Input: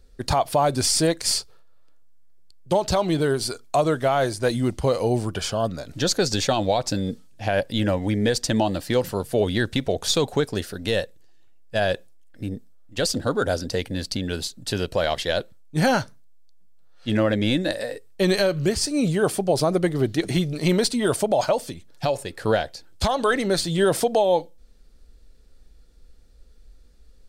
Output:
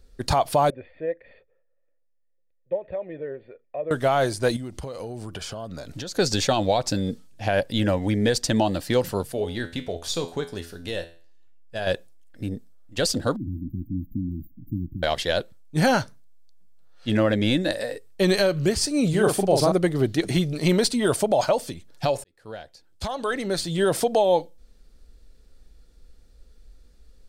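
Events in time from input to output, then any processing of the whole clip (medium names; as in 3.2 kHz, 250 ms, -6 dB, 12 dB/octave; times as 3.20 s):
0.70–3.91 s: cascade formant filter e
4.56–6.15 s: compression 12:1, threshold -30 dBFS
9.32–11.87 s: feedback comb 84 Hz, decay 0.42 s, mix 70%
13.36–15.03 s: brick-wall FIR band-stop 340–14000 Hz
19.09–19.72 s: doubling 42 ms -4 dB
22.24–24.28 s: fade in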